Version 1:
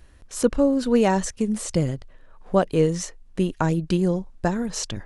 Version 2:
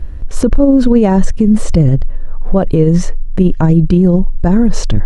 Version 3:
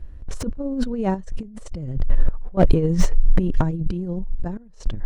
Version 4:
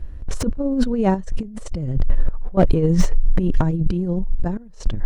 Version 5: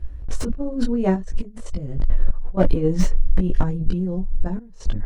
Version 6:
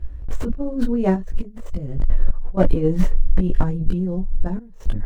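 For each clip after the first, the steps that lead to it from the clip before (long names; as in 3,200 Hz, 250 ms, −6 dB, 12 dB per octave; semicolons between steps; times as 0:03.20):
spectral tilt −3.5 dB per octave; boost into a limiter +13 dB; level −1 dB
compressor whose output falls as the input rises −14 dBFS, ratio −0.5; sample-and-hold tremolo, depth 95%; slew-rate limiting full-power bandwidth 150 Hz; level +1 dB
downward compressor 5 to 1, threshold −15 dBFS, peak gain reduction 7.5 dB; level +5 dB
multi-voice chorus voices 6, 0.77 Hz, delay 19 ms, depth 2.6 ms
running median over 9 samples; level +1 dB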